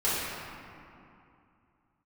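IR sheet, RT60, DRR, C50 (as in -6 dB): 2.6 s, -11.5 dB, -3.5 dB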